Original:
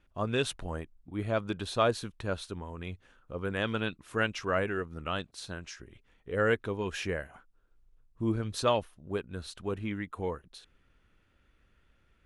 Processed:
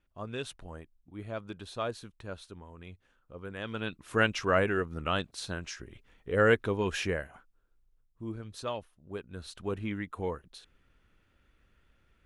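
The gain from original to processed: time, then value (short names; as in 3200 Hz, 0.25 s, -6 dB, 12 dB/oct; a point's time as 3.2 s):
3.6 s -8 dB
4.14 s +3.5 dB
6.93 s +3.5 dB
8.22 s -9 dB
8.91 s -9 dB
9.64 s 0 dB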